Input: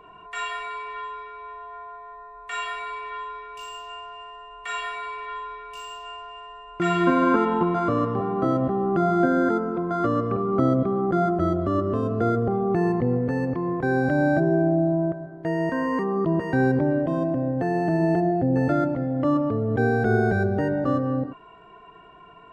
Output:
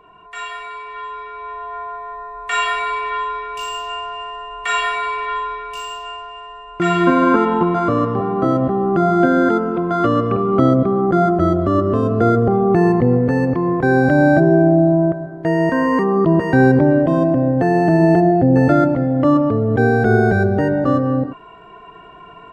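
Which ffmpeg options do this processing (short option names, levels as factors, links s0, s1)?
-filter_complex "[0:a]asettb=1/sr,asplit=3[s0][s1][s2];[s0]atrim=end=9.224[s3];[s1]atrim=start=9.22:end=10.71,asetpts=PTS-STARTPTS,afade=t=in:d=0.004:c=qsin,afade=t=out:st=1.486:d=0.004:c=qsin,equalizer=f=2900:w=2.2:g=8[s4];[s2]atrim=start=10.706[s5];[s3][s4]acrossfade=d=0.004:c1=hsin:c2=qsin[s6];[s6][s5]acrossfade=d=0.004:c1=qsin:c2=hsin,dynaudnorm=f=900:g=3:m=3.76"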